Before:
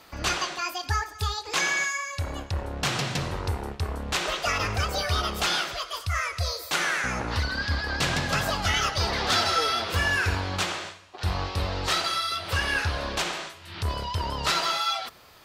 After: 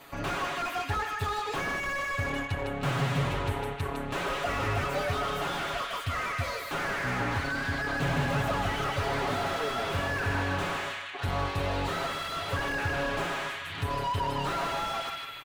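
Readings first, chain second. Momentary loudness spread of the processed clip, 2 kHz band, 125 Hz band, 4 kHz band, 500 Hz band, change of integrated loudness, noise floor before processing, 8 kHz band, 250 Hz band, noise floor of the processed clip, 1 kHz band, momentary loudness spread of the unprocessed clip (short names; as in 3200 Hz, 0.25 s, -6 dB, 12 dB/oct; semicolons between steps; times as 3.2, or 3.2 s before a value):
4 LU, -3.5 dB, -2.0 dB, -9.0 dB, +1.0 dB, -4.0 dB, -47 dBFS, -11.5 dB, +1.0 dB, -38 dBFS, -1.5 dB, 8 LU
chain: soft clip -22.5 dBFS, distortion -14 dB; bell 5100 Hz -11.5 dB 0.52 oct; comb 7.2 ms, depth 93%; on a send: narrowing echo 0.155 s, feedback 65%, band-pass 2200 Hz, level -5 dB; on the sum: slew limiter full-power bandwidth 47 Hz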